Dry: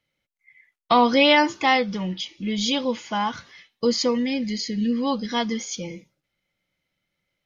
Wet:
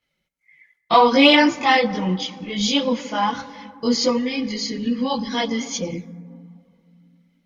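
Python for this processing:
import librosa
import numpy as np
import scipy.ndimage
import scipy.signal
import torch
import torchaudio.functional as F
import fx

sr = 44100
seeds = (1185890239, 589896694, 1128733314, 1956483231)

y = fx.rev_fdn(x, sr, rt60_s=2.4, lf_ratio=1.45, hf_ratio=0.3, size_ms=35.0, drr_db=14.0)
y = fx.chorus_voices(y, sr, voices=4, hz=0.65, base_ms=21, depth_ms=3.8, mix_pct=65)
y = fx.cheby_harmonics(y, sr, harmonics=(7,), levels_db=(-42,), full_scale_db=-7.0)
y = y * librosa.db_to_amplitude(6.0)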